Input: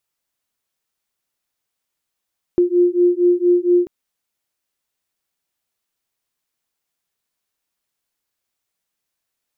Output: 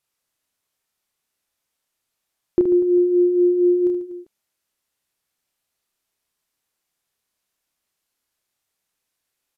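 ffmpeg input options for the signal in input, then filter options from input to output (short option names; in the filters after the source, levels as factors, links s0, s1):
-f lavfi -i "aevalsrc='0.178*(sin(2*PI*351*t)+sin(2*PI*355.3*t))':d=1.29:s=44100"
-af "aresample=32000,aresample=44100,aecho=1:1:30|75|142.5|243.8|395.6:0.631|0.398|0.251|0.158|0.1"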